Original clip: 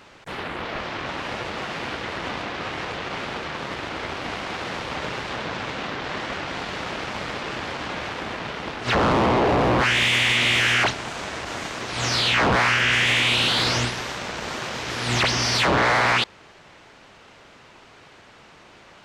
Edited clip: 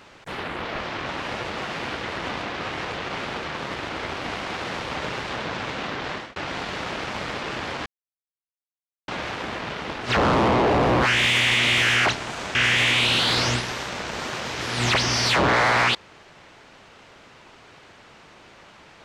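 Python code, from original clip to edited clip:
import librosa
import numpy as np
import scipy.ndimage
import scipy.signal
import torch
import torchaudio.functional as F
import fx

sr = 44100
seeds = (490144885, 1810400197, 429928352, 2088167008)

y = fx.edit(x, sr, fx.fade_out_span(start_s=6.1, length_s=0.26),
    fx.insert_silence(at_s=7.86, length_s=1.22),
    fx.cut(start_s=11.33, length_s=1.51), tone=tone)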